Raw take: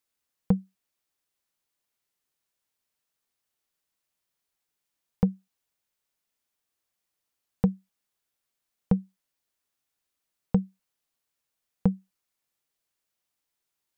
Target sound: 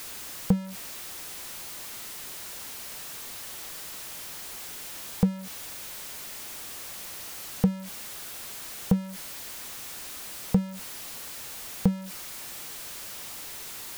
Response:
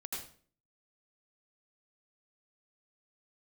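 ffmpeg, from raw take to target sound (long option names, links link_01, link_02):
-af "aeval=exprs='val(0)+0.5*0.0224*sgn(val(0))':channel_layout=same"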